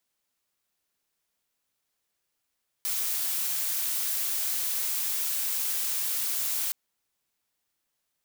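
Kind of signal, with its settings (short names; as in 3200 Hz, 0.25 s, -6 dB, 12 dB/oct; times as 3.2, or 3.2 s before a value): noise blue, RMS -29 dBFS 3.87 s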